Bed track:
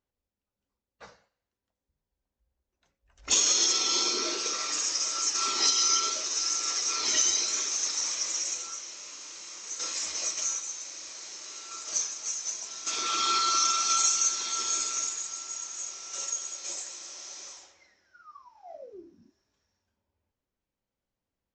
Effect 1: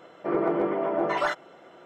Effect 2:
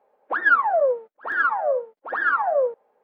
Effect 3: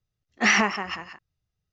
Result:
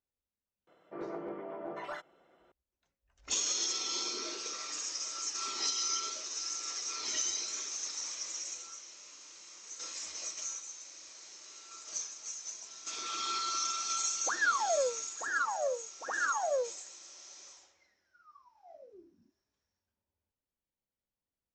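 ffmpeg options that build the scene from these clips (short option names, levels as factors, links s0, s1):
-filter_complex "[0:a]volume=0.355[s0];[2:a]asoftclip=type=tanh:threshold=0.266[s1];[1:a]atrim=end=1.85,asetpts=PTS-STARTPTS,volume=0.168,afade=t=in:d=0.004:c=hsin,afade=t=out:st=1.846:d=0.004:c=hsin,adelay=670[s2];[s1]atrim=end=3.03,asetpts=PTS-STARTPTS,volume=0.316,afade=t=in:d=0.004:c=hsin,afade=t=out:st=3.026:d=0.004:c=hsin,adelay=615636S[s3];[s0][s2][s3]amix=inputs=3:normalize=0"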